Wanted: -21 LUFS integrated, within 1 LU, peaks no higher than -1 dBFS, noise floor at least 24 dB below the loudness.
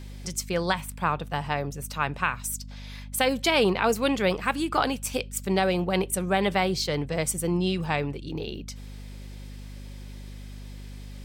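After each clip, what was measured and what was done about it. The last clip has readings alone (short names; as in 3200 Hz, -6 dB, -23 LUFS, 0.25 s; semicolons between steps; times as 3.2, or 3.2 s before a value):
hum 50 Hz; harmonics up to 250 Hz; hum level -38 dBFS; loudness -26.5 LUFS; peak -9.5 dBFS; loudness target -21.0 LUFS
-> de-hum 50 Hz, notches 5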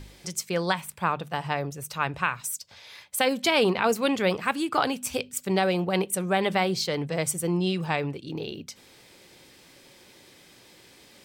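hum none; loudness -27.0 LUFS; peak -9.5 dBFS; loudness target -21.0 LUFS
-> gain +6 dB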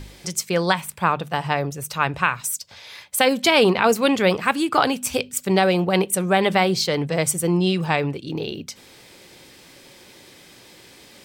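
loudness -21.0 LUFS; peak -3.5 dBFS; noise floor -48 dBFS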